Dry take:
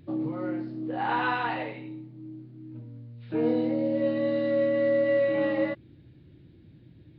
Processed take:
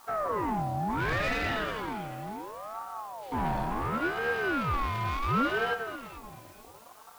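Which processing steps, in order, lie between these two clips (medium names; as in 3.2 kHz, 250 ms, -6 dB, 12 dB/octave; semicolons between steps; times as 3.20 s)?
waveshaping leveller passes 3; word length cut 8-bit, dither triangular; on a send: echo whose repeats swap between lows and highs 218 ms, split 810 Hz, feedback 54%, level -5.5 dB; on the sum: ring modulator with a swept carrier 740 Hz, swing 40%, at 0.7 Hz; trim -7 dB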